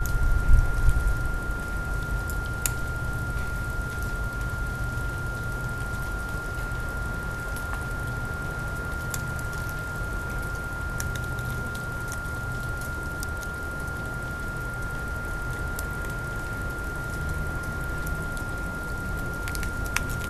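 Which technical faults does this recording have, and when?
whine 1.4 kHz -33 dBFS

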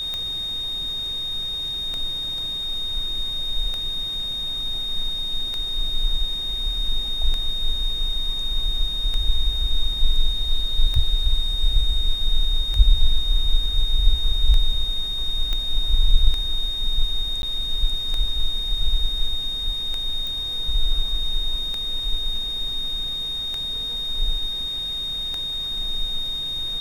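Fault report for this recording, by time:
tick 33 1/3 rpm -14 dBFS
whine 3.7 kHz -25 dBFS
15.53 s: pop -13 dBFS
17.42–17.43 s: dropout 11 ms
20.27 s: pop

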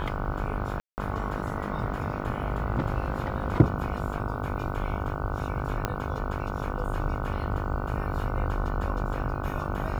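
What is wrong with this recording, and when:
buzz 50 Hz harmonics 30 -34 dBFS
0.80–0.98 s: dropout 179 ms
5.85 s: pop -12 dBFS

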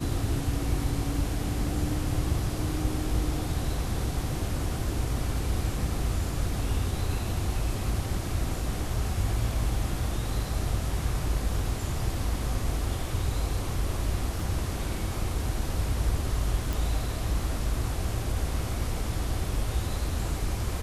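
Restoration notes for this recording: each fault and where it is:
14.40 s: dropout 2.3 ms
16.73 s: pop

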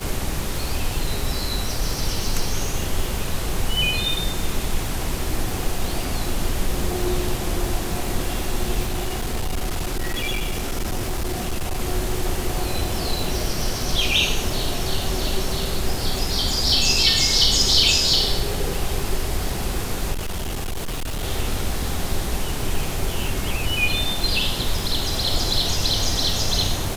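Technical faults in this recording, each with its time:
crackle 270 per s -27 dBFS
8.86–11.81 s: clipped -20 dBFS
20.12–21.24 s: clipped -23 dBFS

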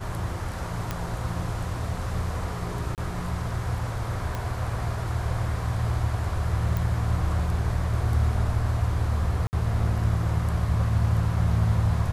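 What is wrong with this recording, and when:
0.91 s: pop -14 dBFS
2.95–2.98 s: dropout 28 ms
4.35 s: pop -17 dBFS
6.77 s: pop
9.47–9.53 s: dropout 59 ms

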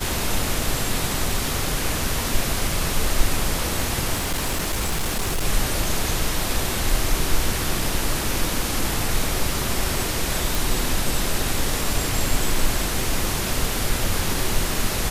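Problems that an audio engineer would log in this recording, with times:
4.14–5.45 s: clipped -19 dBFS
10.55 s: pop

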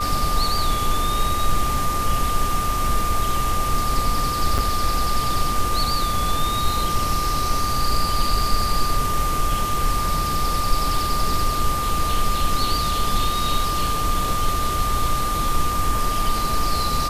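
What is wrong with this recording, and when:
whine 1.2 kHz -23 dBFS
4.58–4.59 s: dropout 6.5 ms

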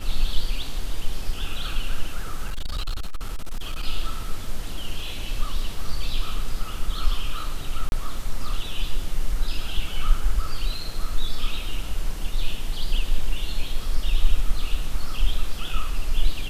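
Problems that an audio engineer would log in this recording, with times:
2.48–3.84 s: clipped -22.5 dBFS
7.89–7.92 s: dropout 31 ms

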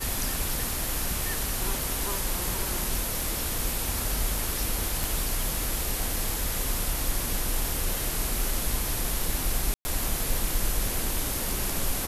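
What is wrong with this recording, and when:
5.04 s: pop
9.74–9.85 s: dropout 110 ms

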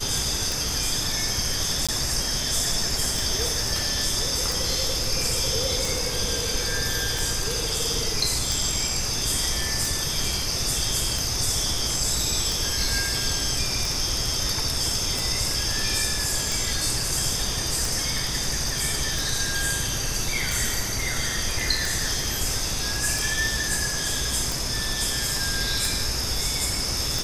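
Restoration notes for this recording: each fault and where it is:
tick 45 rpm
1.87–1.89 s: dropout 16 ms

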